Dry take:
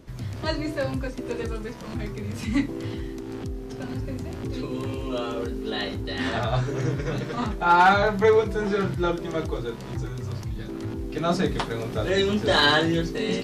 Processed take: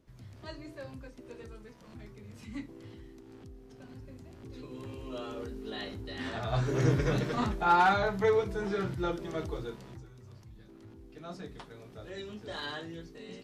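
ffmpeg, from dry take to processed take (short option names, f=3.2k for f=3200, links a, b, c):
-af "volume=0.5dB,afade=t=in:st=4.35:d=0.94:silence=0.473151,afade=t=in:st=6.42:d=0.48:silence=0.281838,afade=t=out:st=6.9:d=0.98:silence=0.375837,afade=t=out:st=9.64:d=0.4:silence=0.251189"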